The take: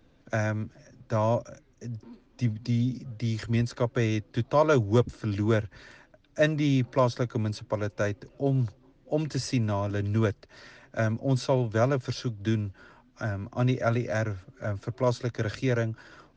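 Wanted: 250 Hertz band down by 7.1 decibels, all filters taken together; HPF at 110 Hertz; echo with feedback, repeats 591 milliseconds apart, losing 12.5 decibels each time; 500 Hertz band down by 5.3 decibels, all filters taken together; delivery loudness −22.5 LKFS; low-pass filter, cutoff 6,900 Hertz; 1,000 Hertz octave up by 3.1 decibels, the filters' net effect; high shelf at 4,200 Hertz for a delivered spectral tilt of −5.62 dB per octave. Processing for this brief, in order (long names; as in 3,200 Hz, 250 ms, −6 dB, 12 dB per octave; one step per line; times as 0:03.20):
high-pass filter 110 Hz
low-pass filter 6,900 Hz
parametric band 250 Hz −7 dB
parametric band 500 Hz −7 dB
parametric band 1,000 Hz +5.5 dB
high-shelf EQ 4,200 Hz +4.5 dB
repeating echo 591 ms, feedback 24%, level −12.5 dB
level +9 dB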